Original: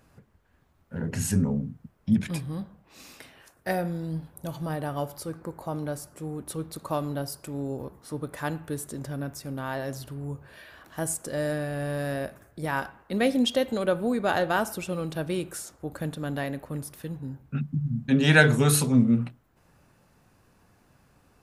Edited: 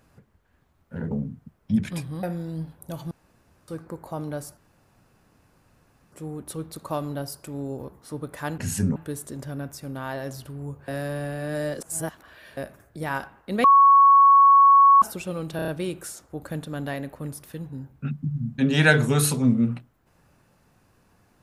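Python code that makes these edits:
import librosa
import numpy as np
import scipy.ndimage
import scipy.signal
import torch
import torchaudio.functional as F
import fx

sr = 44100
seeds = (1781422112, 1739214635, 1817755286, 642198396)

y = fx.edit(x, sr, fx.move(start_s=1.11, length_s=0.38, to_s=8.58),
    fx.cut(start_s=2.61, length_s=1.17),
    fx.room_tone_fill(start_s=4.66, length_s=0.57),
    fx.insert_room_tone(at_s=6.12, length_s=1.55),
    fx.reverse_span(start_s=10.5, length_s=1.69),
    fx.bleep(start_s=13.26, length_s=1.38, hz=1110.0, db=-10.5),
    fx.stutter(start_s=15.18, slice_s=0.03, count=5), tone=tone)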